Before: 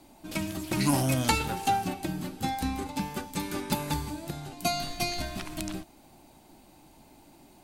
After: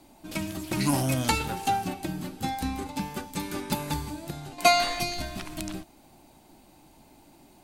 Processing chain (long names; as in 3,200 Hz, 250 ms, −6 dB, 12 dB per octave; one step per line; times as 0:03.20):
0:04.58–0:05.00: octave-band graphic EQ 125/500/1,000/2,000/4,000/8,000 Hz −11/+9/+9/+12/+4/+5 dB